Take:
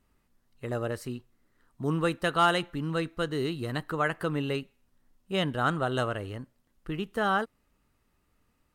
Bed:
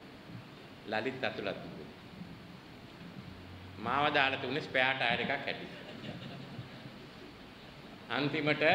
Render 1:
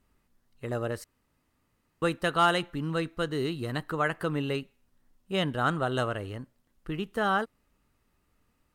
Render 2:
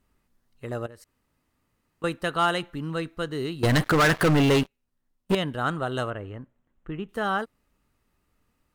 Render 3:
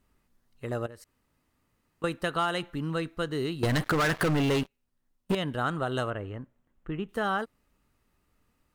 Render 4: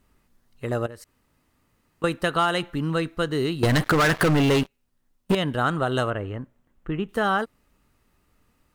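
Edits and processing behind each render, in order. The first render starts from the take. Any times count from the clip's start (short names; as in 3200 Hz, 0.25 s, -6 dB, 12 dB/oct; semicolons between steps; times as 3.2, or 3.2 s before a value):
1.04–2.02 room tone
0.86–2.04 compressor 2.5:1, threshold -49 dBFS; 3.63–5.35 sample leveller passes 5; 6.1–7.09 running mean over 9 samples
compressor, threshold -24 dBFS, peak gain reduction 6.5 dB
gain +6 dB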